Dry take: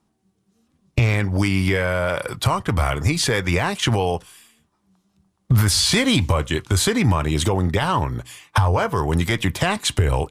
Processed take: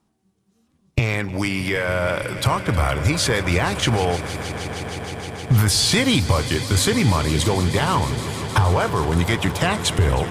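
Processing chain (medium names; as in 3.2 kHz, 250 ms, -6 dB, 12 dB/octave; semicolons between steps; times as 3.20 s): 0.99–1.87 s: high-pass 160 Hz -> 350 Hz 6 dB/octave; echo with a slow build-up 156 ms, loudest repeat 5, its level -16.5 dB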